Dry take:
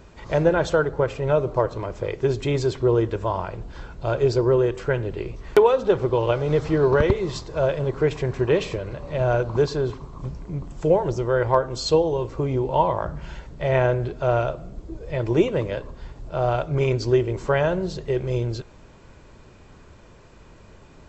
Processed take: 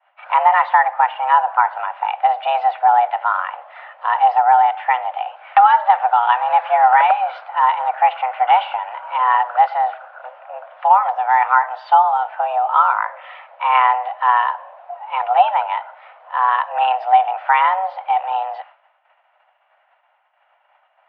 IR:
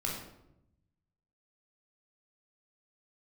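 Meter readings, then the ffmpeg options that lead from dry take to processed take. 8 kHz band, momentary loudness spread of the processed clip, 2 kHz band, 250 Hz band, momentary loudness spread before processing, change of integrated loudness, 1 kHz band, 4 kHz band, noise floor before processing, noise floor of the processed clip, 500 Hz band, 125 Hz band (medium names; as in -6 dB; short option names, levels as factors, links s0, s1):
no reading, 12 LU, +9.5 dB, under -40 dB, 12 LU, +6.5 dB, +17.5 dB, +2.0 dB, -48 dBFS, -62 dBFS, -7.5 dB, under -40 dB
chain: -af "agate=range=0.0224:threshold=0.0141:ratio=3:detection=peak,highpass=f=250:t=q:w=0.5412,highpass=f=250:t=q:w=1.307,lowpass=f=2600:t=q:w=0.5176,lowpass=f=2600:t=q:w=0.7071,lowpass=f=2600:t=q:w=1.932,afreqshift=380,alimiter=level_in=2.51:limit=0.891:release=50:level=0:latency=1,volume=0.891"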